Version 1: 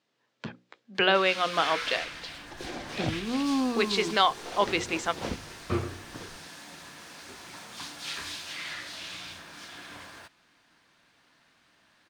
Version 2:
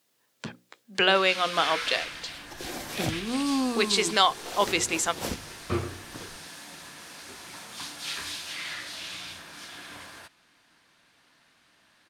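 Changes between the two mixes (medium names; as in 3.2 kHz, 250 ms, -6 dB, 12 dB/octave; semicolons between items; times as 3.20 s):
first sound: add low-pass 4.4 kHz 12 dB/octave; master: remove distance through air 150 m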